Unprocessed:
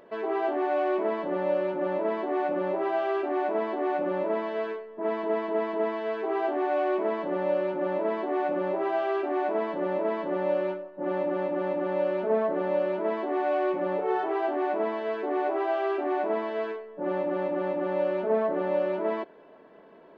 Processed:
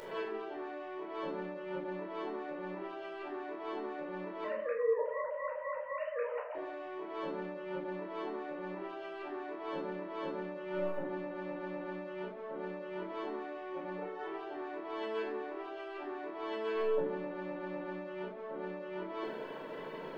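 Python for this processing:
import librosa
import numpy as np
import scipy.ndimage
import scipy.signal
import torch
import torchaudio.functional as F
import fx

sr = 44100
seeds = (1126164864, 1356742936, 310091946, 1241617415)

y = fx.sine_speech(x, sr, at=(4.44, 6.55))
y = fx.high_shelf(y, sr, hz=2100.0, db=11.0)
y = fx.over_compress(y, sr, threshold_db=-38.0, ratio=-1.0)
y = y + 10.0 ** (-21.0 / 20.0) * np.pad(y, (int(229 * sr / 1000.0), 0))[:len(y)]
y = fx.room_shoebox(y, sr, seeds[0], volume_m3=980.0, walls='furnished', distance_m=4.6)
y = y * 10.0 ** (-8.5 / 20.0)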